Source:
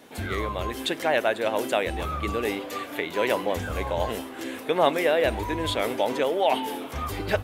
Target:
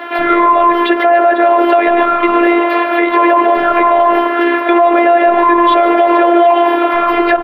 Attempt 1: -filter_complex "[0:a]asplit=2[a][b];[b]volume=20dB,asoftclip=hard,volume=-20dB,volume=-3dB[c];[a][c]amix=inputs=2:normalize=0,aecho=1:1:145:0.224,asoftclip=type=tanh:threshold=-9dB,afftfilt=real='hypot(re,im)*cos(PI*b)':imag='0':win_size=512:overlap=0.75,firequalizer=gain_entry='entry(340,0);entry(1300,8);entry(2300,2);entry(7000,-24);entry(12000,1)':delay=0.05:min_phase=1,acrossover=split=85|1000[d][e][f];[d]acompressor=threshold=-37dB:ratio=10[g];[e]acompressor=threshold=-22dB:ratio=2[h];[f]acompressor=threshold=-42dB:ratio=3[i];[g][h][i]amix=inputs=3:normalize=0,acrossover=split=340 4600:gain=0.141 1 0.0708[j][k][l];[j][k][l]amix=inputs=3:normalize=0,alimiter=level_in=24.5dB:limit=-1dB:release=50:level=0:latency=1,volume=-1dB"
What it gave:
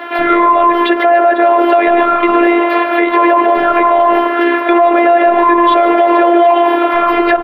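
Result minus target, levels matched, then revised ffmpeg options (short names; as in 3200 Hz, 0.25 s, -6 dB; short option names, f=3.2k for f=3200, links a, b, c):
overloaded stage: distortion -7 dB
-filter_complex "[0:a]asplit=2[a][b];[b]volume=30.5dB,asoftclip=hard,volume=-30.5dB,volume=-3dB[c];[a][c]amix=inputs=2:normalize=0,aecho=1:1:145:0.224,asoftclip=type=tanh:threshold=-9dB,afftfilt=real='hypot(re,im)*cos(PI*b)':imag='0':win_size=512:overlap=0.75,firequalizer=gain_entry='entry(340,0);entry(1300,8);entry(2300,2);entry(7000,-24);entry(12000,1)':delay=0.05:min_phase=1,acrossover=split=85|1000[d][e][f];[d]acompressor=threshold=-37dB:ratio=10[g];[e]acompressor=threshold=-22dB:ratio=2[h];[f]acompressor=threshold=-42dB:ratio=3[i];[g][h][i]amix=inputs=3:normalize=0,acrossover=split=340 4600:gain=0.141 1 0.0708[j][k][l];[j][k][l]amix=inputs=3:normalize=0,alimiter=level_in=24.5dB:limit=-1dB:release=50:level=0:latency=1,volume=-1dB"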